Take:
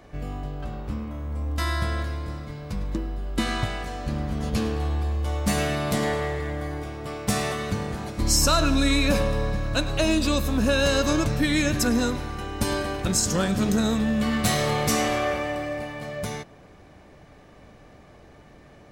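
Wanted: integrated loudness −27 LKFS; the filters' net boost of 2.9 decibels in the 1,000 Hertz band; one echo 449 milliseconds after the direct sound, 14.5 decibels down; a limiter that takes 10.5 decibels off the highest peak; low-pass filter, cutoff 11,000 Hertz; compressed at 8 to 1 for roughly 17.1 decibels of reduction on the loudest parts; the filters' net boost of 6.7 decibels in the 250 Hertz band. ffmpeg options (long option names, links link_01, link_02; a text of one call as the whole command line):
ffmpeg -i in.wav -af "lowpass=11000,equalizer=frequency=250:width_type=o:gain=8,equalizer=frequency=1000:width_type=o:gain=3.5,acompressor=threshold=-31dB:ratio=8,alimiter=level_in=6dB:limit=-24dB:level=0:latency=1,volume=-6dB,aecho=1:1:449:0.188,volume=12dB" out.wav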